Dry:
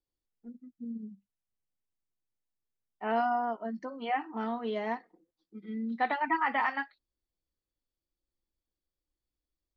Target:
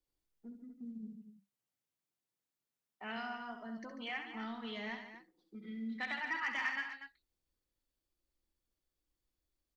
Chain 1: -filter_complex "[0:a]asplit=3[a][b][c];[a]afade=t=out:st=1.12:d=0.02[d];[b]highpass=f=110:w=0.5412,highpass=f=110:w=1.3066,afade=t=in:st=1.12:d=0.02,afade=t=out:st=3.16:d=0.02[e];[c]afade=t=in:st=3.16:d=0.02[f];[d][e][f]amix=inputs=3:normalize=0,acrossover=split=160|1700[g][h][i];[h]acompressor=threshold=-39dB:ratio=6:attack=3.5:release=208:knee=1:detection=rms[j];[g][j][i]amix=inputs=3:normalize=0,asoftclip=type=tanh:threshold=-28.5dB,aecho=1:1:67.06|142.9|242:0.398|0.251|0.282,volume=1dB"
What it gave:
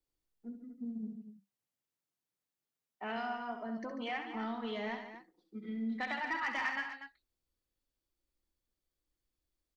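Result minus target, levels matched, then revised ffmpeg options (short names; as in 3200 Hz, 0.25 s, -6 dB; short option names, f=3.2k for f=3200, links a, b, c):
compressor: peak gain reduction -8.5 dB
-filter_complex "[0:a]asplit=3[a][b][c];[a]afade=t=out:st=1.12:d=0.02[d];[b]highpass=f=110:w=0.5412,highpass=f=110:w=1.3066,afade=t=in:st=1.12:d=0.02,afade=t=out:st=3.16:d=0.02[e];[c]afade=t=in:st=3.16:d=0.02[f];[d][e][f]amix=inputs=3:normalize=0,acrossover=split=160|1700[g][h][i];[h]acompressor=threshold=-49.5dB:ratio=6:attack=3.5:release=208:knee=1:detection=rms[j];[g][j][i]amix=inputs=3:normalize=0,asoftclip=type=tanh:threshold=-28.5dB,aecho=1:1:67.06|142.9|242:0.398|0.251|0.282,volume=1dB"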